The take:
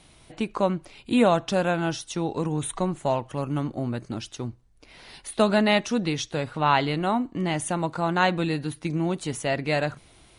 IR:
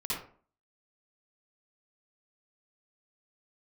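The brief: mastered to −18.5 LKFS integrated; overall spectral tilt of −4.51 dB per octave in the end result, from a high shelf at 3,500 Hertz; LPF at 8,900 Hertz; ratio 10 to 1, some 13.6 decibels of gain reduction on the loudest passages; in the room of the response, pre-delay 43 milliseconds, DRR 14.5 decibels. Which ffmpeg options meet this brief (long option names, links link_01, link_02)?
-filter_complex "[0:a]lowpass=8900,highshelf=frequency=3500:gain=6,acompressor=threshold=-28dB:ratio=10,asplit=2[link_01][link_02];[1:a]atrim=start_sample=2205,adelay=43[link_03];[link_02][link_03]afir=irnorm=-1:irlink=0,volume=-19dB[link_04];[link_01][link_04]amix=inputs=2:normalize=0,volume=14.5dB"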